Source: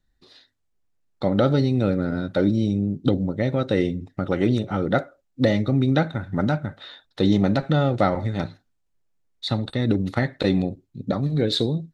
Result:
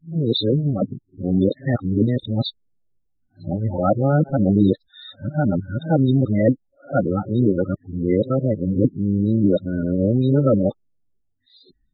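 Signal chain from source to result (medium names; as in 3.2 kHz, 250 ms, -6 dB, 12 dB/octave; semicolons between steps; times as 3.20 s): reverse the whole clip; loudest bins only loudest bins 16; trim +3 dB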